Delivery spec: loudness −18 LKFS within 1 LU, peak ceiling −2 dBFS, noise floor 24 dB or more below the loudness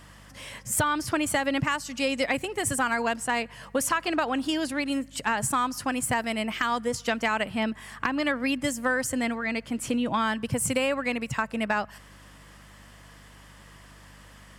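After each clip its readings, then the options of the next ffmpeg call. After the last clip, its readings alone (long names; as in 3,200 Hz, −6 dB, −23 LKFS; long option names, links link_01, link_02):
mains hum 50 Hz; hum harmonics up to 200 Hz; level of the hum −50 dBFS; integrated loudness −27.5 LKFS; sample peak −13.5 dBFS; target loudness −18.0 LKFS
→ -af "bandreject=frequency=50:width_type=h:width=4,bandreject=frequency=100:width_type=h:width=4,bandreject=frequency=150:width_type=h:width=4,bandreject=frequency=200:width_type=h:width=4"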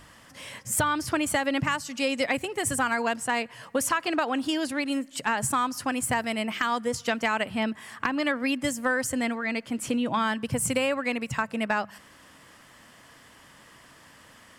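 mains hum none found; integrated loudness −27.5 LKFS; sample peak −13.0 dBFS; target loudness −18.0 LKFS
→ -af "volume=9.5dB"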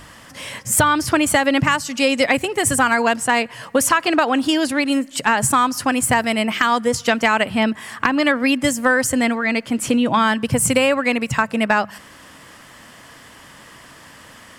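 integrated loudness −18.0 LKFS; sample peak −3.5 dBFS; background noise floor −44 dBFS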